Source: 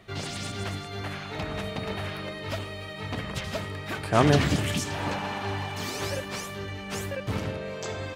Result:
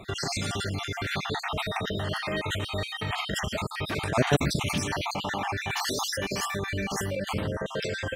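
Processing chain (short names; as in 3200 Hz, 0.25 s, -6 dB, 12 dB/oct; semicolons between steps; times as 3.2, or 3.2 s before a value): random spectral dropouts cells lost 49%; in parallel at +1.5 dB: negative-ratio compressor -38 dBFS, ratio -0.5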